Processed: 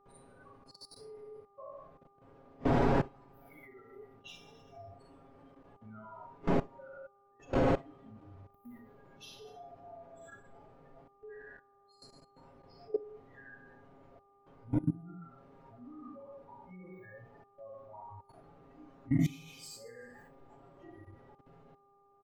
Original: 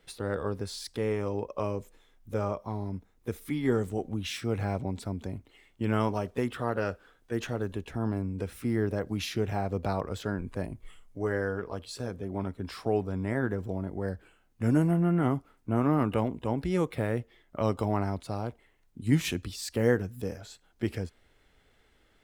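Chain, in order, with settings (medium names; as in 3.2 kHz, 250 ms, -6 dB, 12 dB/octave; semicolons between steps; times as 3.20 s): expander on every frequency bin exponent 3; wind noise 540 Hz -36 dBFS; treble shelf 2.4 kHz -2.5 dB; comb 7.3 ms, depth 79%; Schroeder reverb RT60 1 s, combs from 33 ms, DRR -4.5 dB; level held to a coarse grid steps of 20 dB; mains buzz 400 Hz, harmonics 3, -48 dBFS 0 dB/octave; spectral noise reduction 13 dB; trim -6 dB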